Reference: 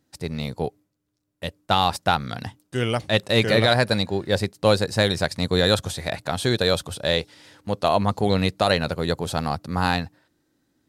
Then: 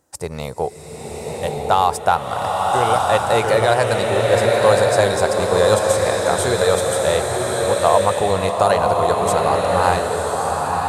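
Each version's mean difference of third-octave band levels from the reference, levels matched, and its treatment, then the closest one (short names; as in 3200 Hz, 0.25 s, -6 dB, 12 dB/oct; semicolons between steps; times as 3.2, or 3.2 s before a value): 8.5 dB: graphic EQ 125/250/500/1000/2000/4000/8000 Hz -4/-10/+5/+7/-3/-9/+9 dB; in parallel at +2.5 dB: compressor, threshold -29 dBFS, peak gain reduction 18 dB; on the sum: bloom reverb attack 1.17 s, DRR -1 dB; gain -1.5 dB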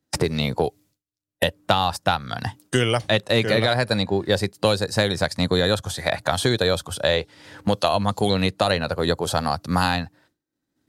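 3.0 dB: expander -52 dBFS; spectral noise reduction 6 dB; three-band squash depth 100%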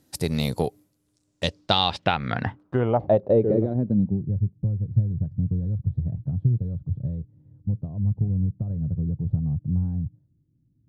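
16.5 dB: bell 1500 Hz -4 dB 1.4 oct; compressor 6:1, threshold -26 dBFS, peak gain reduction 12.5 dB; low-pass sweep 12000 Hz -> 130 Hz, 0.95–4.36; gain +6.5 dB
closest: second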